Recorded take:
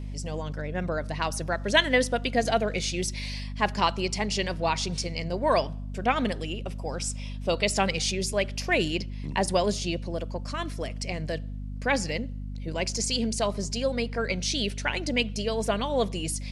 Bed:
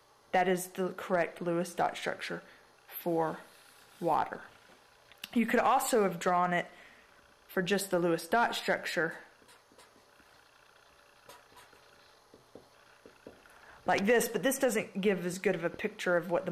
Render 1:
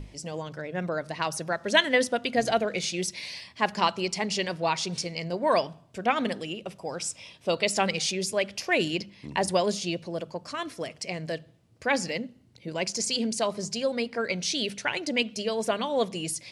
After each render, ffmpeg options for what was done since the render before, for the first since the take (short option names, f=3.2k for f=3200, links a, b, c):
-af "bandreject=f=50:t=h:w=6,bandreject=f=100:t=h:w=6,bandreject=f=150:t=h:w=6,bandreject=f=200:t=h:w=6,bandreject=f=250:t=h:w=6"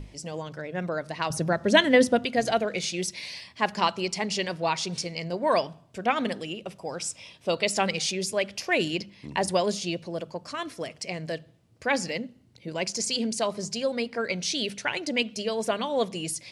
-filter_complex "[0:a]asettb=1/sr,asplit=3[a][b][c];[a]atrim=end=1.304[d];[b]atrim=start=1.3:end=2.25,asetpts=PTS-STARTPTS,afade=t=in:d=0.004:c=qsin,afade=t=out:st=0.946:d=0.004:c=qsin,lowshelf=f=430:g=12[e];[c]atrim=start=2.246[f];[d][e]acrossfade=d=0.004:c1=hsin:c2=qsin[g];[g][f]acrossfade=d=0.004:c1=qsin:c2=hsin"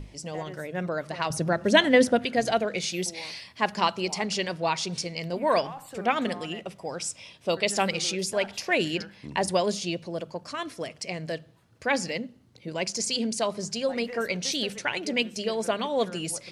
-filter_complex "[1:a]volume=-14dB[a];[0:a][a]amix=inputs=2:normalize=0"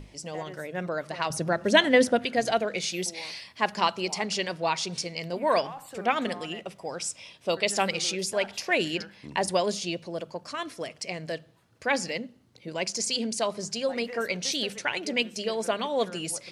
-af "lowshelf=f=210:g=-5.5"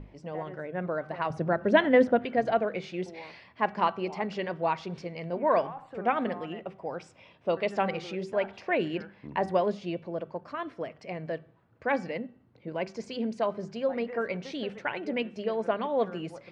-af "lowpass=1.6k,bandreject=f=383.2:t=h:w=4,bandreject=f=766.4:t=h:w=4,bandreject=f=1.1496k:t=h:w=4,bandreject=f=1.5328k:t=h:w=4,bandreject=f=1.916k:t=h:w=4,bandreject=f=2.2992k:t=h:w=4,bandreject=f=2.6824k:t=h:w=4,bandreject=f=3.0656k:t=h:w=4,bandreject=f=3.4488k:t=h:w=4"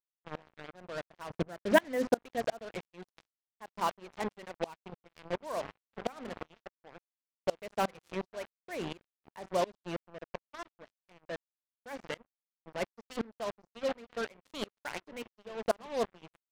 -af "acrusher=bits=4:mix=0:aa=0.5,aeval=exprs='val(0)*pow(10,-27*if(lt(mod(-2.8*n/s,1),2*abs(-2.8)/1000),1-mod(-2.8*n/s,1)/(2*abs(-2.8)/1000),(mod(-2.8*n/s,1)-2*abs(-2.8)/1000)/(1-2*abs(-2.8)/1000))/20)':c=same"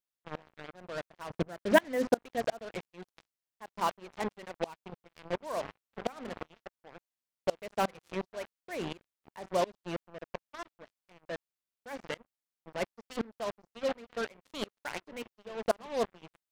-af "volume=1dB"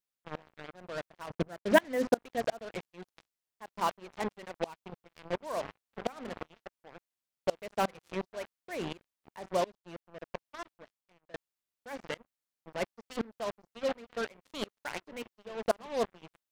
-filter_complex "[0:a]asettb=1/sr,asplit=3[a][b][c];[a]atrim=end=1.264[d];[b]atrim=start=1.26:end=2.15,asetpts=PTS-STARTPTS,afade=t=in:d=0.004:c=qsin,afade=t=out:st=0.886:d=0.004:c=qsin,agate=range=-33dB:threshold=-43dB:ratio=3:release=100:detection=peak[e];[c]atrim=start=2.146[f];[d][e]acrossfade=d=0.004:c1=hsin:c2=qsin[g];[g][f]acrossfade=d=0.004:c1=qsin:c2=hsin,asplit=4[h][i][j][k];[h]atrim=end=9.86,asetpts=PTS-STARTPTS,afade=t=out:st=9.56:d=0.3:silence=0.316228[l];[i]atrim=start=9.86:end=9.94,asetpts=PTS-STARTPTS,volume=-10dB[m];[j]atrim=start=9.94:end=11.34,asetpts=PTS-STARTPTS,afade=t=in:d=0.3:silence=0.316228,afade=t=out:st=0.82:d=0.58:silence=0.0794328[n];[k]atrim=start=11.34,asetpts=PTS-STARTPTS,afade=t=in:d=0.004:c=hsin:silence=0.0794328[o];[l][m][n][o]concat=n=4:v=0:a=1"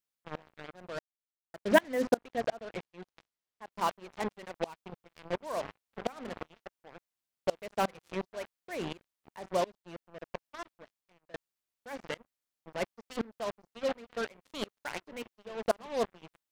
-filter_complex "[0:a]asettb=1/sr,asplit=3[a][b][c];[a]atrim=end=2.174[d];[b]atrim=start=2.17:end=3.72,asetpts=PTS-STARTPTS,afade=t=in:d=0.004:c=qsin,afade=t=out:st=1.546:d=0.004:c=qsin,highshelf=f=7.3k:g=-10[e];[c]atrim=start=3.716[f];[d][e]acrossfade=d=0.004:c1=hsin:c2=qsin[g];[g][f]acrossfade=d=0.004:c1=qsin:c2=hsin,asplit=3[h][i][j];[h]atrim=end=0.99,asetpts=PTS-STARTPTS,afade=t=out:st=0.986:d=0.004:c=hsin[k];[i]atrim=start=0.99:end=1.54,asetpts=PTS-STARTPTS,volume=0[l];[j]atrim=start=1.54,asetpts=PTS-STARTPTS,afade=t=in:d=0.004:c=hsin[m];[k][l][m]concat=n=3:v=0:a=1"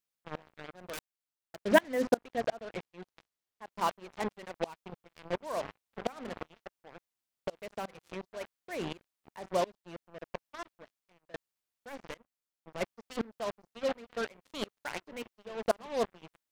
-filter_complex "[0:a]asettb=1/sr,asplit=3[a][b][c];[a]atrim=end=0.734[d];[b]atrim=start=0.73:end=1.6,asetpts=PTS-STARTPTS,afade=t=in:d=0.004:c=qsin,afade=t=out:st=0.866:d=0.004:c=qsin,aeval=exprs='(mod(44.7*val(0)+1,2)-1)/44.7':c=same[e];[c]atrim=start=1.596[f];[d][e]acrossfade=d=0.004:c1=hsin:c2=qsin[g];[g][f]acrossfade=d=0.004:c1=qsin:c2=hsin,asettb=1/sr,asplit=3[h][i][j];[h]atrim=end=7.484[k];[i]atrim=start=7.48:end=8.41,asetpts=PTS-STARTPTS,afade=t=in:d=0.004:c=qsin,afade=t=out:st=0.926:d=0.004:c=qsin,acompressor=threshold=-36dB:ratio=3:attack=3.2:release=140:knee=1:detection=peak[l];[j]atrim=start=8.406[m];[k][l]acrossfade=d=0.004:c1=hsin:c2=qsin[n];[n][m]acrossfade=d=0.004:c1=qsin:c2=hsin,asettb=1/sr,asplit=3[o][p][q];[o]atrim=end=11.894[r];[p]atrim=start=11.89:end=12.81,asetpts=PTS-STARTPTS,afade=t=in:d=0.004:c=qsin,afade=t=out:st=0.916:d=0.004:c=qsin,aeval=exprs='(tanh(44.7*val(0)+0.75)-tanh(0.75))/44.7':c=same[s];[q]atrim=start=12.806[t];[r][s]acrossfade=d=0.004:c1=hsin:c2=qsin[u];[u][t]acrossfade=d=0.004:c1=qsin:c2=hsin"